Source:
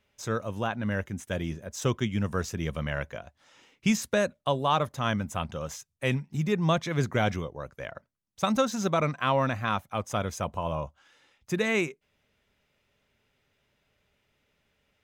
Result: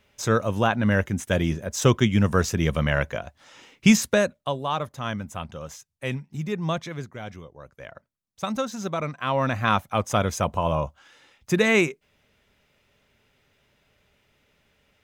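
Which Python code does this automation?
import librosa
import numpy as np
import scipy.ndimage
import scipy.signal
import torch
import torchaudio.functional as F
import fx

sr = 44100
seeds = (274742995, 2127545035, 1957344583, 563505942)

y = fx.gain(x, sr, db=fx.line((3.96, 8.5), (4.58, -2.0), (6.86, -2.0), (7.12, -12.5), (7.91, -2.5), (9.17, -2.5), (9.68, 7.0)))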